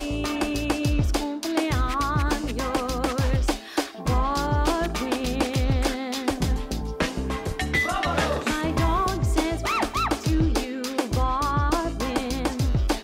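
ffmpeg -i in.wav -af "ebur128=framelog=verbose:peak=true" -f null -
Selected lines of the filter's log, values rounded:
Integrated loudness:
  I:         -25.2 LUFS
  Threshold: -35.2 LUFS
Loudness range:
  LRA:         1.5 LU
  Threshold: -45.1 LUFS
  LRA low:   -25.8 LUFS
  LRA high:  -24.3 LUFS
True peak:
  Peak:       -8.6 dBFS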